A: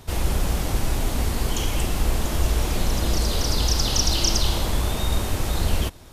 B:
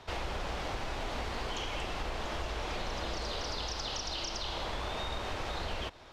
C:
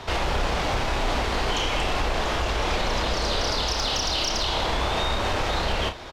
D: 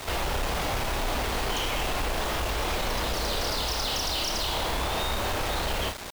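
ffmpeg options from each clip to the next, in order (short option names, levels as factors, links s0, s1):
-filter_complex "[0:a]acrossover=split=440 5800:gain=0.224 1 0.112[s0][s1][s2];[s0][s1][s2]amix=inputs=3:normalize=0,acompressor=threshold=0.0251:ratio=6,highshelf=f=6600:g=-10"
-filter_complex "[0:a]asplit=2[s0][s1];[s1]alimiter=level_in=2.51:limit=0.0631:level=0:latency=1,volume=0.398,volume=0.841[s2];[s0][s2]amix=inputs=2:normalize=0,asoftclip=type=tanh:threshold=0.0631,aecho=1:1:31|61:0.422|0.15,volume=2.66"
-af "asoftclip=type=tanh:threshold=0.0562,acrusher=bits=5:mix=0:aa=0.000001"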